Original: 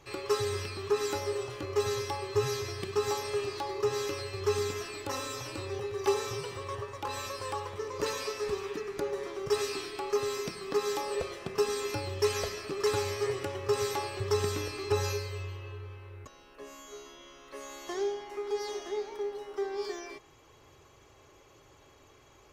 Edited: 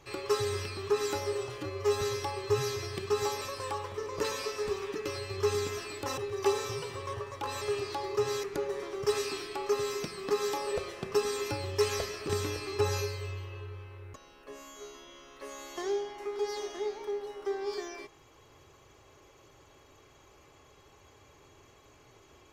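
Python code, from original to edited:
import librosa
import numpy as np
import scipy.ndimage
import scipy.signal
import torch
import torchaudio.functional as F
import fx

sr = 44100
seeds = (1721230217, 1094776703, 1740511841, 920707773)

y = fx.edit(x, sr, fx.stretch_span(start_s=1.58, length_s=0.29, factor=1.5),
    fx.swap(start_s=3.27, length_s=0.82, other_s=7.23, other_length_s=1.64),
    fx.cut(start_s=5.21, length_s=0.58),
    fx.cut(start_s=12.73, length_s=1.68), tone=tone)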